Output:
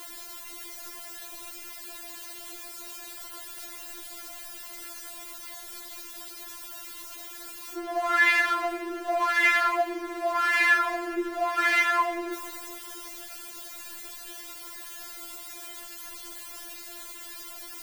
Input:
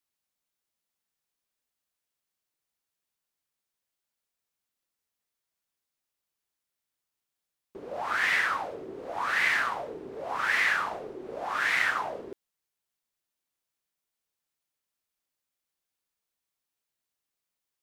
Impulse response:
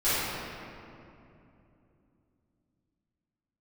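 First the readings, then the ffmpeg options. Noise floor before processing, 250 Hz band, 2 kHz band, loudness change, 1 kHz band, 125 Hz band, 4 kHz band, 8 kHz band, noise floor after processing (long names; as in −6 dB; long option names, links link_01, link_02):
below −85 dBFS, +11.0 dB, +3.5 dB, −2.0 dB, +5.5 dB, below −15 dB, +3.5 dB, +11.0 dB, −43 dBFS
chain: -filter_complex "[0:a]aeval=exprs='val(0)+0.5*0.015*sgn(val(0))':channel_layout=same,lowpass=frequency=1900:poles=1,aemphasis=mode=production:type=50kf,asplit=2[link_01][link_02];[1:a]atrim=start_sample=2205,highshelf=frequency=5800:gain=-4.5,adelay=100[link_03];[link_02][link_03]afir=irnorm=-1:irlink=0,volume=-28.5dB[link_04];[link_01][link_04]amix=inputs=2:normalize=0,afftfilt=real='re*4*eq(mod(b,16),0)':imag='im*4*eq(mod(b,16),0)':win_size=2048:overlap=0.75,volume=6.5dB"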